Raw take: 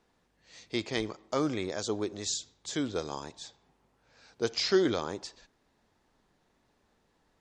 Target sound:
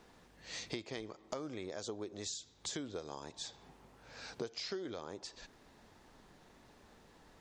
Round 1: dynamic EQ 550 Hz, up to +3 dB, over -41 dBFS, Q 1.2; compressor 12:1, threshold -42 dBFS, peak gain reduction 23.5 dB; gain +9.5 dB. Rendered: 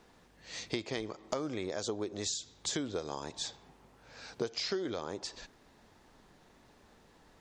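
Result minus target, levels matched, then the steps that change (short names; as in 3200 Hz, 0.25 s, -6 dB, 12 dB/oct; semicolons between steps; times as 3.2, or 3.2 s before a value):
compressor: peak gain reduction -6.5 dB
change: compressor 12:1, threshold -49 dBFS, peak gain reduction 30 dB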